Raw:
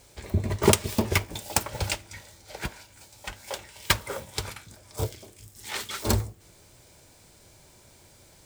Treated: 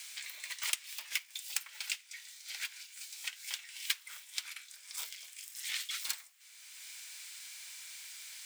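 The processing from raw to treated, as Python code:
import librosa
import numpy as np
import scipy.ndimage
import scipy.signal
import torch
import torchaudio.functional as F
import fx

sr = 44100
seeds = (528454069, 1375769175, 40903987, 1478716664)

y = fx.ladder_highpass(x, sr, hz=1700.0, resonance_pct=25)
y = fx.band_squash(y, sr, depth_pct=70)
y = y * librosa.db_to_amplitude(1.0)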